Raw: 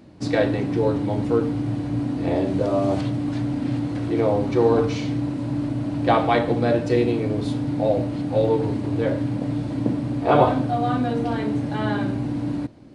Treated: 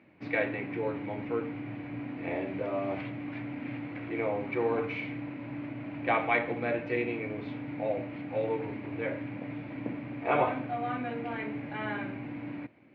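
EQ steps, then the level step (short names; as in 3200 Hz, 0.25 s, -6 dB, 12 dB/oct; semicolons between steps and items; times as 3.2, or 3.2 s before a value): HPF 87 Hz; ladder low-pass 2500 Hz, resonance 70%; low shelf 260 Hz -7.5 dB; +2.0 dB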